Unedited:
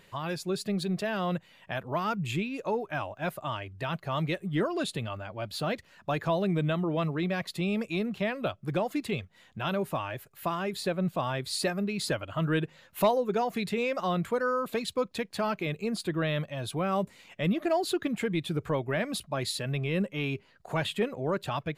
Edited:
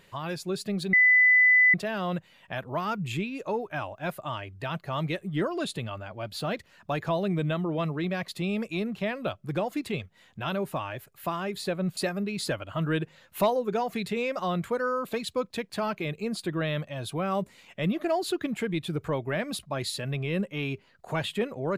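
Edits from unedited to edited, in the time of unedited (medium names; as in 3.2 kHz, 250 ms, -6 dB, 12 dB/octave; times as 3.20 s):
0.93 s: add tone 2 kHz -15.5 dBFS 0.81 s
11.16–11.58 s: delete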